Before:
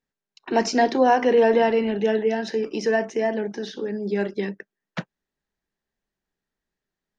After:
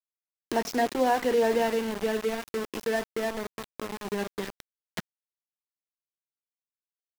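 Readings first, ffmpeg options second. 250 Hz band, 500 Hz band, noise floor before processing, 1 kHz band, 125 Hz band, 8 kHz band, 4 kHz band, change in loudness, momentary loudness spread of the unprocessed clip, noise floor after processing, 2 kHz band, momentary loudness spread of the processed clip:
-7.5 dB, -7.0 dB, under -85 dBFS, -6.5 dB, -7.5 dB, no reading, -3.5 dB, -6.5 dB, 16 LU, under -85 dBFS, -5.5 dB, 15 LU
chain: -af "aeval=exprs='val(0)*gte(abs(val(0)),0.0631)':c=same,acompressor=mode=upward:threshold=0.0708:ratio=2.5,volume=0.473"

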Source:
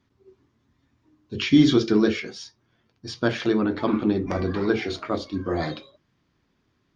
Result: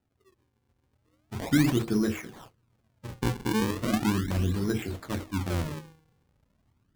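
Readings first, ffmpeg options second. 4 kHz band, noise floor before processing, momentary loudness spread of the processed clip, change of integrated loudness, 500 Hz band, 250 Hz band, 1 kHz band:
-7.5 dB, -70 dBFS, 16 LU, -5.5 dB, -9.0 dB, -6.0 dB, -3.5 dB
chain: -af "bandreject=f=157.2:t=h:w=4,bandreject=f=314.4:t=h:w=4,bandreject=f=471.6:t=h:w=4,bandreject=f=628.8:t=h:w=4,bandreject=f=786:t=h:w=4,bandreject=f=943.2:t=h:w=4,bandreject=f=1100.4:t=h:w=4,bandreject=f=1257.6:t=h:w=4,bandreject=f=1414.8:t=h:w=4,bandreject=f=1572:t=h:w=4,bandreject=f=1729.2:t=h:w=4,bandreject=f=1886.4:t=h:w=4,asubboost=boost=5:cutoff=210,acrusher=samples=39:mix=1:aa=0.000001:lfo=1:lforange=62.4:lforate=0.37,volume=0.398"

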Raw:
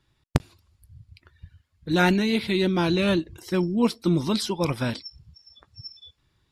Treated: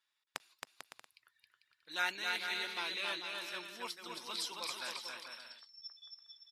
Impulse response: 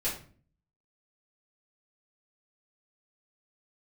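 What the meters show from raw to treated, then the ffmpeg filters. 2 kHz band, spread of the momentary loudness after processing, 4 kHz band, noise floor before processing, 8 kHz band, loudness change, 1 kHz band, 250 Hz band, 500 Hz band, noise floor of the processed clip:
-7.5 dB, 17 LU, -7.0 dB, -71 dBFS, -7.0 dB, -15.5 dB, -12.0 dB, -33.0 dB, -23.5 dB, -84 dBFS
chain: -filter_complex "[0:a]highpass=1200,asplit=2[s0][s1];[s1]aecho=0:1:270|445.5|559.6|633.7|681.9:0.631|0.398|0.251|0.158|0.1[s2];[s0][s2]amix=inputs=2:normalize=0,volume=0.355"

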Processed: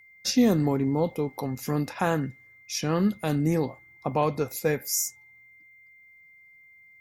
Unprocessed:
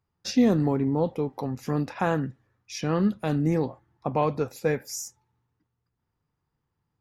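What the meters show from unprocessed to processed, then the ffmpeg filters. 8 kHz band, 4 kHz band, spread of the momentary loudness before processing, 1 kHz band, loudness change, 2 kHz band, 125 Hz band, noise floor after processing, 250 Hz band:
+7.5 dB, +5.0 dB, 13 LU, 0.0 dB, 0.0 dB, +1.5 dB, -0.5 dB, -55 dBFS, -0.5 dB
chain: -af "aeval=exprs='val(0)+0.00224*sin(2*PI*2100*n/s)':c=same,aemphasis=mode=production:type=50fm"

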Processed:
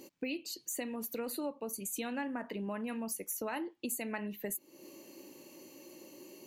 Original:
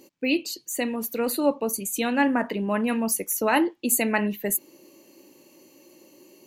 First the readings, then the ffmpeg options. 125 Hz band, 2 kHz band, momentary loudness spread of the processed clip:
no reading, -15.5 dB, 15 LU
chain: -af "acompressor=threshold=0.0141:ratio=5"

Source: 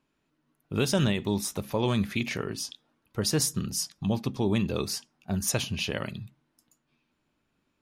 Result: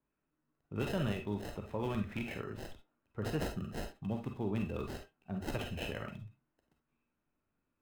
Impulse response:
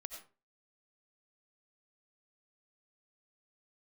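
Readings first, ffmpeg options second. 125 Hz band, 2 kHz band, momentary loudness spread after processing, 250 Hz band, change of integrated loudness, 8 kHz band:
-9.0 dB, -9.0 dB, 11 LU, -9.5 dB, -10.0 dB, -25.0 dB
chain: -filter_complex "[0:a]adynamicequalizer=threshold=0.00398:dfrequency=3000:dqfactor=4:tfrequency=3000:tqfactor=4:attack=5:release=100:ratio=0.375:range=3:mode=boostabove:tftype=bell,acrossover=split=520|2600[s0][s1][s2];[s2]acrusher=samples=38:mix=1:aa=0.000001[s3];[s0][s1][s3]amix=inputs=3:normalize=0[s4];[1:a]atrim=start_sample=2205,asetrate=88200,aresample=44100[s5];[s4][s5]afir=irnorm=-1:irlink=0,volume=1.12"

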